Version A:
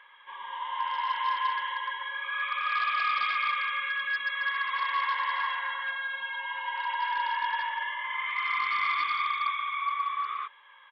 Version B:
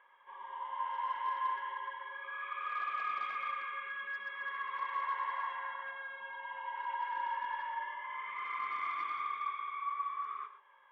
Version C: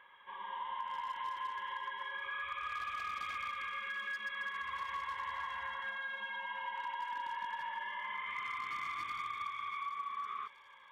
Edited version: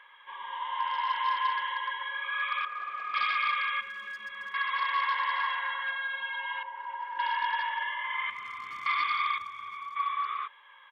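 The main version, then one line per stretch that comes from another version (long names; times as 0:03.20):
A
0:02.65–0:03.14: punch in from B
0:03.81–0:04.54: punch in from C
0:06.63–0:07.19: punch in from B
0:08.30–0:08.86: punch in from C
0:09.38–0:09.96: punch in from C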